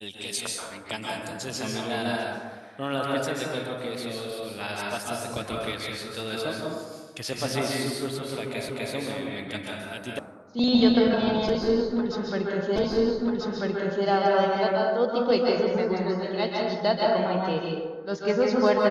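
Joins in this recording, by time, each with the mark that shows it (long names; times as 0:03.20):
0:08.69: the same again, the last 0.25 s
0:10.19: cut off before it has died away
0:12.76: the same again, the last 1.29 s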